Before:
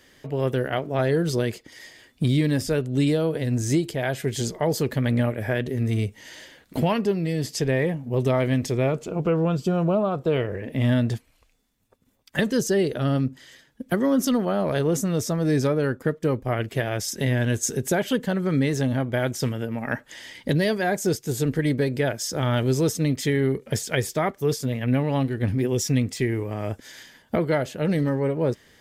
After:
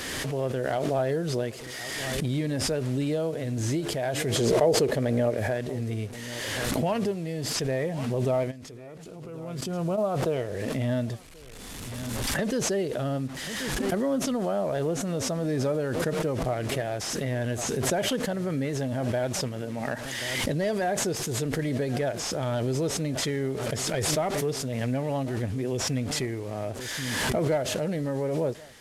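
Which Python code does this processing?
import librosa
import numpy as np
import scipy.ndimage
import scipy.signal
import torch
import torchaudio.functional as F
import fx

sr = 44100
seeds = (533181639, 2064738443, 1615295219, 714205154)

y = fx.delta_mod(x, sr, bps=64000, step_db=-37.5)
y = fx.peak_eq(y, sr, hz=440.0, db=8.5, octaves=0.95, at=(4.34, 5.37))
y = fx.level_steps(y, sr, step_db=18, at=(8.5, 9.97), fade=0.02)
y = y + 10.0 ** (-22.0 / 20.0) * np.pad(y, (int(1083 * sr / 1000.0), 0))[:len(y)]
y = fx.dynamic_eq(y, sr, hz=640.0, q=2.0, threshold_db=-40.0, ratio=4.0, max_db=7)
y = fx.pre_swell(y, sr, db_per_s=21.0)
y = F.gain(torch.from_numpy(y), -8.0).numpy()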